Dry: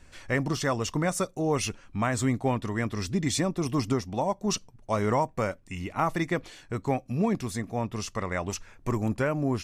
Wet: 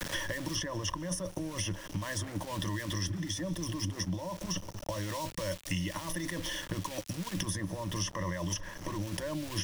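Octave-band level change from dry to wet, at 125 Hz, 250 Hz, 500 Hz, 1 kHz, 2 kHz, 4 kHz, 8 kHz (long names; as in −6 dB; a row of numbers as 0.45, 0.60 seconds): −5.5, −8.5, −10.5, −10.5, −5.5, +1.0, −1.5 decibels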